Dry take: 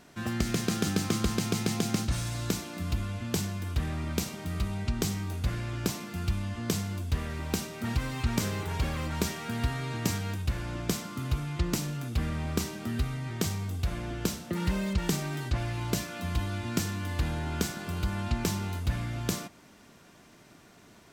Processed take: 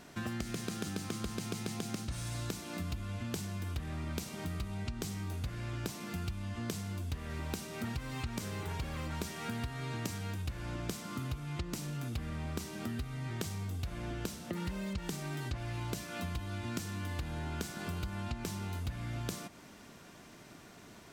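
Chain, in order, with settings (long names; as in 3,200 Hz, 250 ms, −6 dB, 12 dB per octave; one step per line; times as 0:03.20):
dynamic equaliser 9,400 Hz, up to +4 dB, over −55 dBFS, Q 4.6
downward compressor, threshold −37 dBFS, peak gain reduction 14.5 dB
level +1.5 dB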